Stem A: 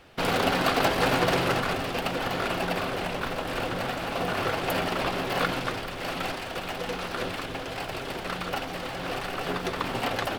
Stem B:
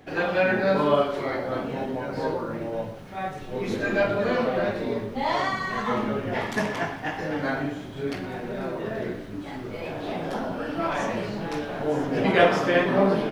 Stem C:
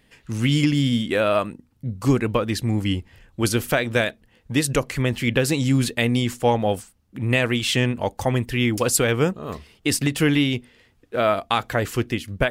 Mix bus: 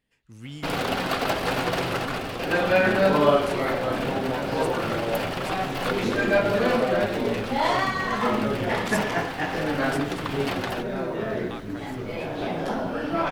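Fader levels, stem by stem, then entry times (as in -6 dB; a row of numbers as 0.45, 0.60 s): -2.0, +2.0, -19.0 dB; 0.45, 2.35, 0.00 s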